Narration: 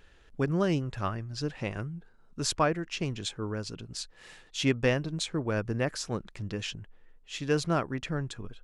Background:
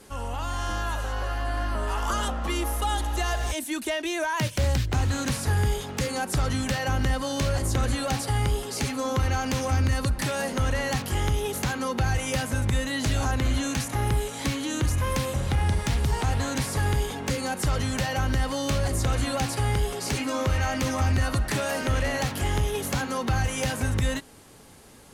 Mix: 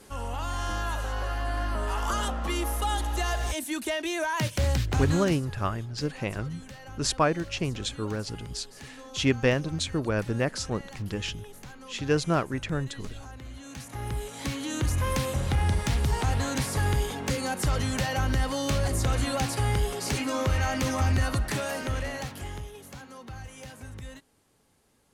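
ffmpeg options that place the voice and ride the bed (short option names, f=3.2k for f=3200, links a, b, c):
-filter_complex "[0:a]adelay=4600,volume=2.5dB[a];[1:a]volume=15.5dB,afade=t=out:st=5.09:d=0.33:silence=0.149624,afade=t=in:st=13.59:d=1.47:silence=0.141254,afade=t=out:st=21.18:d=1.56:silence=0.16788[b];[a][b]amix=inputs=2:normalize=0"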